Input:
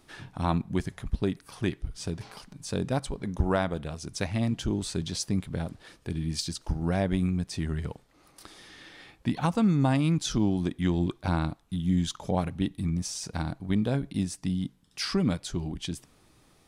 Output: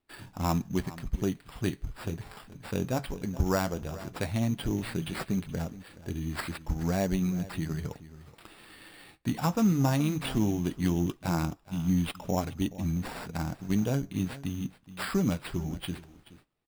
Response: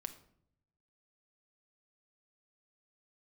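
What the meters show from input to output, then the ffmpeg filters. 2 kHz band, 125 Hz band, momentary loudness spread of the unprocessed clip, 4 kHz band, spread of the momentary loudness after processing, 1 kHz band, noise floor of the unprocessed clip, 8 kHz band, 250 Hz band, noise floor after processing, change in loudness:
−0.5 dB, −1.5 dB, 11 LU, −5.0 dB, 11 LU, −1.5 dB, −62 dBFS, −4.0 dB, −1.5 dB, −60 dBFS, −1.5 dB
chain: -filter_complex "[0:a]asplit=2[link_01][link_02];[link_02]acrusher=bits=4:mode=log:mix=0:aa=0.000001,volume=-8.5dB[link_03];[link_01][link_03]amix=inputs=2:normalize=0,highshelf=frequency=9400:gain=-7.5,asplit=2[link_04][link_05];[link_05]aecho=0:1:424:0.141[link_06];[link_04][link_06]amix=inputs=2:normalize=0,agate=range=-20dB:threshold=-51dB:ratio=16:detection=peak,acrusher=samples=7:mix=1:aa=0.000001,flanger=delay=2.7:depth=8.3:regen=-63:speed=0.16:shape=triangular"

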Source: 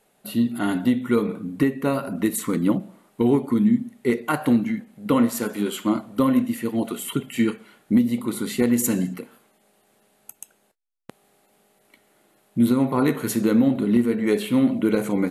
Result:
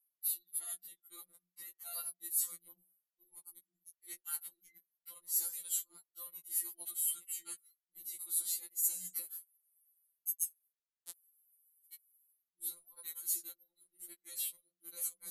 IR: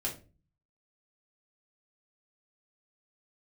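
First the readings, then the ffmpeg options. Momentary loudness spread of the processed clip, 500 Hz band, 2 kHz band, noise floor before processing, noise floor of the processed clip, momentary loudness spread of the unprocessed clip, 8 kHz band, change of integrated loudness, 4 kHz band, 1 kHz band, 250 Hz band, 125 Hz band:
20 LU, below −40 dB, −28.0 dB, −64 dBFS, below −85 dBFS, 7 LU, −2.0 dB, −15.0 dB, −14.0 dB, −32.5 dB, below −40 dB, below −40 dB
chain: -af "aexciter=amount=3.5:drive=6.2:freq=3700,areverse,acompressor=threshold=-30dB:ratio=10,areverse,aderivative,anlmdn=0.0398,acontrast=63,afftfilt=real='re*2.83*eq(mod(b,8),0)':imag='im*2.83*eq(mod(b,8),0)':win_size=2048:overlap=0.75,volume=-6.5dB"

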